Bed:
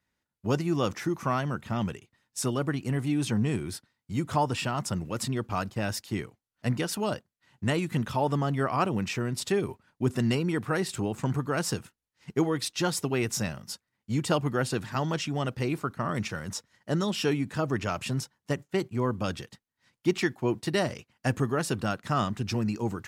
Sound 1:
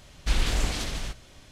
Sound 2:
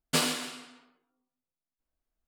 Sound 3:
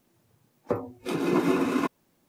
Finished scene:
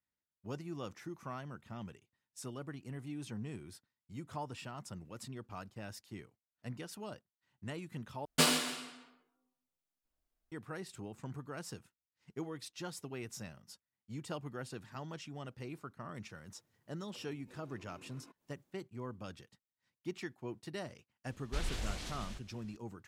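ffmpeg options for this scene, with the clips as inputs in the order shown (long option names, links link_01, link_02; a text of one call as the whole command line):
ffmpeg -i bed.wav -i cue0.wav -i cue1.wav -i cue2.wav -filter_complex "[0:a]volume=-16dB[link_01];[3:a]acompressor=threshold=-45dB:ratio=6:attack=3.2:release=140:knee=1:detection=peak[link_02];[link_01]asplit=2[link_03][link_04];[link_03]atrim=end=8.254[link_05];[2:a]atrim=end=2.27,asetpts=PTS-STARTPTS,volume=-1dB[link_06];[link_04]atrim=start=10.516[link_07];[link_02]atrim=end=2.28,asetpts=PTS-STARTPTS,volume=-12.5dB,afade=type=in:duration=0.004:curve=hsin,afade=type=out:start_time=2.276:duration=0.004:curve=hsin,adelay=16450[link_08];[1:a]atrim=end=1.51,asetpts=PTS-STARTPTS,volume=-13dB,afade=type=in:duration=0.004:curve=hsin,afade=type=out:start_time=1.506:duration=0.004:curve=hsin,adelay=21260[link_09];[link_05][link_06]acrossfade=duration=0.004:curve1=hsin:curve2=hsin[link_10];[link_10][link_07]acrossfade=duration=0.004:curve1=hsin:curve2=hsin[link_11];[link_11][link_08][link_09]amix=inputs=3:normalize=0" out.wav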